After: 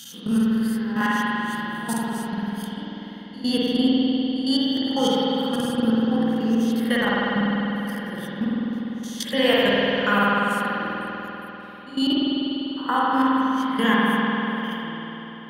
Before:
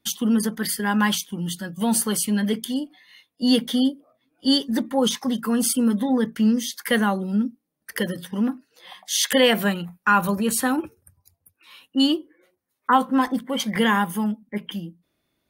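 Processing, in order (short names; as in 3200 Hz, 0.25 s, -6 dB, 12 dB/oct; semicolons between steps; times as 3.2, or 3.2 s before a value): spectral swells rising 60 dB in 0.34 s; level quantiser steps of 19 dB; spring tank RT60 4 s, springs 49 ms, chirp 35 ms, DRR -7.5 dB; gain -3.5 dB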